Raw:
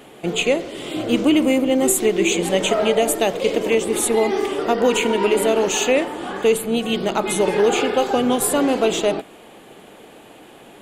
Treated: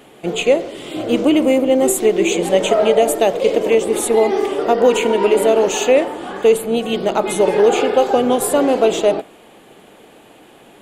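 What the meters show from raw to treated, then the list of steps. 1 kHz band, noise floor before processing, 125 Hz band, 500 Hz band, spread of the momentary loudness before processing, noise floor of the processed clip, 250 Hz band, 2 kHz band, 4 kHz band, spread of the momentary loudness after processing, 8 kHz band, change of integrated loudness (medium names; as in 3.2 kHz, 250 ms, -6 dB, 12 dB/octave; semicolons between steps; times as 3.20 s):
+3.5 dB, -44 dBFS, 0.0 dB, +5.0 dB, 5 LU, -45 dBFS, +1.0 dB, -0.5 dB, -0.5 dB, 5 LU, -1.0 dB, +3.5 dB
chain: dynamic bell 570 Hz, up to +7 dB, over -30 dBFS, Q 0.97; trim -1 dB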